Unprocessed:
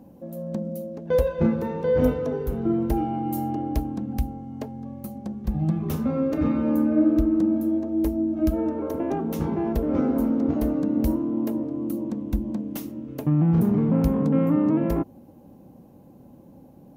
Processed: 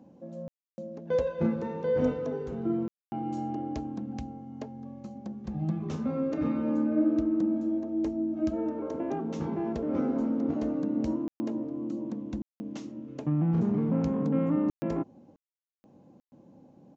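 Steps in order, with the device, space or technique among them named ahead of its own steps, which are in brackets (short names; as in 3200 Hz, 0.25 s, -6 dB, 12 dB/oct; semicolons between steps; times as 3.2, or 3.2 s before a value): call with lost packets (HPF 120 Hz 12 dB/oct; downsampling 16000 Hz; packet loss packets of 60 ms bursts); gain -5.5 dB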